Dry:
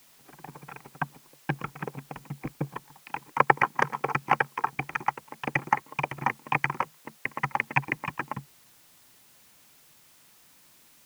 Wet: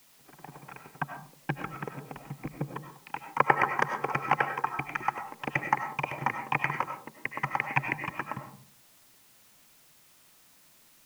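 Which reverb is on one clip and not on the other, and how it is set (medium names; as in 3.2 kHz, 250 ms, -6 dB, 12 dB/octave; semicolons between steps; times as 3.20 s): algorithmic reverb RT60 0.47 s, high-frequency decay 0.35×, pre-delay 55 ms, DRR 6 dB; trim -2.5 dB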